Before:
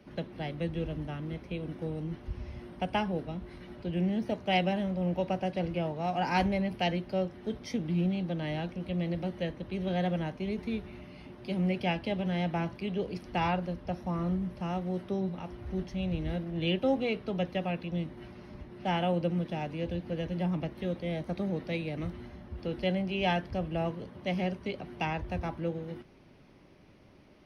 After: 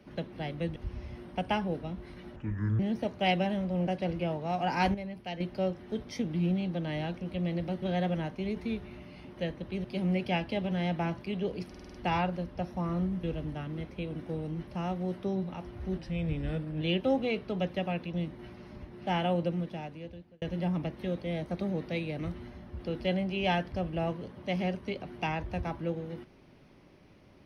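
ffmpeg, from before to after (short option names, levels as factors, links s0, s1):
-filter_complex "[0:a]asplit=20[s0][s1][s2][s3][s4][s5][s6][s7][s8][s9][s10][s11][s12][s13][s14][s15][s16][s17][s18][s19];[s0]atrim=end=0.762[s20];[s1]atrim=start=2.198:end=3.804[s21];[s2]atrim=start=3.8:end=4.06,asetpts=PTS-STARTPTS,asetrate=26460,aresample=44100[s22];[s3]atrim=start=4.056:end=5.142[s23];[s4]atrim=start=5.418:end=6.492[s24];[s5]atrim=start=6.488:end=6.952,asetpts=PTS-STARTPTS,volume=0.355[s25];[s6]atrim=start=6.948:end=9.372[s26];[s7]atrim=start=9.838:end=11.392[s27];[s8]atrim=start=9.368:end=9.842[s28];[s9]atrim=start=11.388:end=13.292[s29];[s10]atrim=start=13.238:end=13.292[s30];[s11]atrim=start=13.238:end=13.292[s31];[s12]atrim=start=13.238:end=13.292[s32];[s13]atrim=start=13.238:end=13.292[s33];[s14]atrim=start=13.238:end=14.532[s34];[s15]atrim=start=0.758:end=2.202[s35];[s16]atrim=start=14.528:end=15.844[s36];[s17]atrim=start=15.84:end=16.59,asetpts=PTS-STARTPTS,asetrate=40131,aresample=44100,atrim=end_sample=36346,asetpts=PTS-STARTPTS[s37];[s18]atrim=start=16.586:end=20.2,asetpts=PTS-STARTPTS,afade=t=out:st=2.564:d=1.05[s38];[s19]atrim=start=20.2,asetpts=PTS-STARTPTS,afade=t=in:d=0.004:c=hsin[s39];[s20][s21]acrossfade=d=0.004:c1=hsin:c2=hsin[s40];[s40][s22]acrossfade=d=0.004:c1=hsin:c2=hsin[s41];[s41][s23]acrossfade=d=0.004:c1=hsin:c2=hsin[s42];[s42][s24]acrossfade=d=0.004:c1=hsin:c2=hsin[s43];[s43][s25]acrossfade=d=0.004:c1=hsin:c2=hsin[s44];[s44][s26]acrossfade=d=0.004:c1=hsin:c2=hsin[s45];[s45][s27]acrossfade=d=0.004:c1=hsin:c2=hsin[s46];[s46][s28]acrossfade=d=0.004:c1=hsin:c2=hsin[s47];[s47][s29]acrossfade=d=0.004:c1=hsin:c2=hsin[s48];[s48][s30]acrossfade=d=0.004:c1=hsin:c2=hsin[s49];[s49][s31]acrossfade=d=0.004:c1=hsin:c2=hsin[s50];[s50][s32]acrossfade=d=0.004:c1=hsin:c2=hsin[s51];[s51][s33]acrossfade=d=0.004:c1=hsin:c2=hsin[s52];[s52][s34]acrossfade=d=0.004:c1=hsin:c2=hsin[s53];[s53][s35]acrossfade=d=0.004:c1=hsin:c2=hsin[s54];[s54][s36]acrossfade=d=0.004:c1=hsin:c2=hsin[s55];[s55][s37]acrossfade=d=0.004:c1=hsin:c2=hsin[s56];[s38][s39]concat=n=2:v=0:a=1[s57];[s56][s57]acrossfade=d=0.004:c1=hsin:c2=hsin"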